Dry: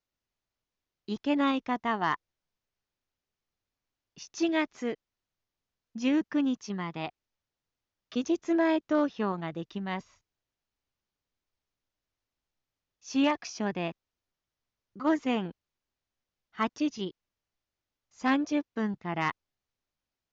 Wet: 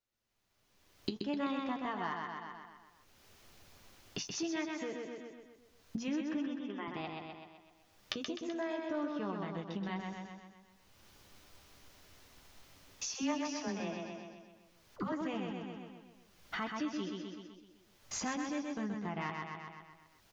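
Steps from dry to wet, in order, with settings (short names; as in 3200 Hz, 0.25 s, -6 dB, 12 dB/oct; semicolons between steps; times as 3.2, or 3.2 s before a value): recorder AGC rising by 27 dB/s; 6.37–6.88 brick-wall FIR band-pass 210–3700 Hz; feedback echo 0.127 s, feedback 54%, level -5 dB; compressor 2:1, threshold -37 dBFS, peak gain reduction 10.5 dB; 13.14–15.12 dispersion lows, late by 81 ms, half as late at 470 Hz; flange 0.28 Hz, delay 8.7 ms, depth 2.5 ms, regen -46%; gain +1 dB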